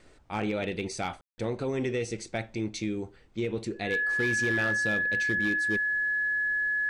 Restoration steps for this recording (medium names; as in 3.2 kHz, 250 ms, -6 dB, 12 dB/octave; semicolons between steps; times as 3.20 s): clip repair -21.5 dBFS; band-stop 1.7 kHz, Q 30; room tone fill 1.21–1.38 s; expander -47 dBFS, range -21 dB